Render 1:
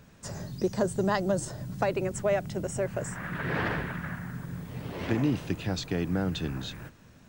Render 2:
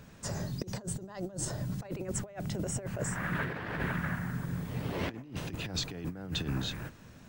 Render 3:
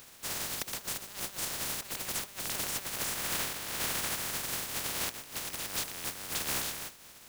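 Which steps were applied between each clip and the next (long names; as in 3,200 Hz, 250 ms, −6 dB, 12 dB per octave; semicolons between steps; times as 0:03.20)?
compressor whose output falls as the input rises −33 dBFS, ratio −0.5; level −1.5 dB
compressing power law on the bin magnitudes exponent 0.12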